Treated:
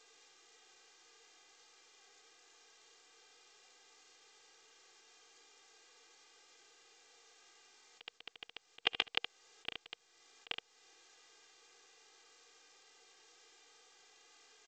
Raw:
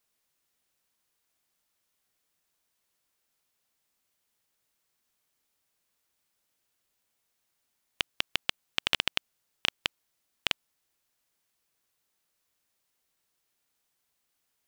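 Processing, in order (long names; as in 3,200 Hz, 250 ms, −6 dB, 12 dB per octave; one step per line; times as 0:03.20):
high-pass filter 340 Hz 12 dB per octave
comb filter 2.5 ms, depth 88%
dynamic equaliser 710 Hz, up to +4 dB, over −51 dBFS, Q 3.3
harmonic and percussive parts rebalanced percussive −11 dB
parametric band 470 Hz +6 dB 0.25 octaves
on a send: single-tap delay 71 ms −13.5 dB
on the sum: volume swells 441 ms
level +18 dB
G.722 64 kbit/s 16,000 Hz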